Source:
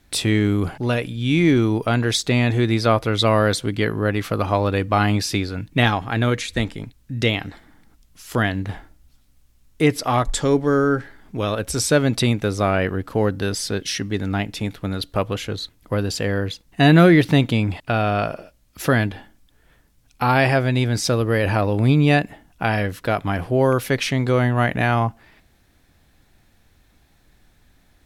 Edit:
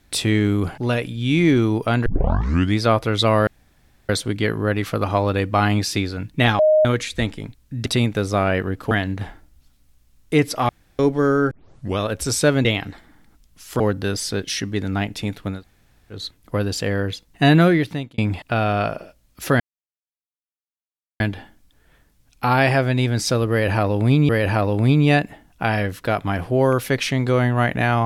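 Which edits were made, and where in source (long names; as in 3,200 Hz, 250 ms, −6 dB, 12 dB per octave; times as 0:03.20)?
0:02.06: tape start 0.72 s
0:03.47: splice in room tone 0.62 s
0:05.97–0:06.23: beep over 619 Hz −11 dBFS
0:07.24–0:08.39: swap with 0:12.13–0:13.18
0:10.17–0:10.47: fill with room tone
0:10.99: tape start 0.47 s
0:14.94–0:15.54: fill with room tone, crossfade 0.16 s
0:16.84–0:17.56: fade out
0:18.98: splice in silence 1.60 s
0:21.29–0:22.07: repeat, 2 plays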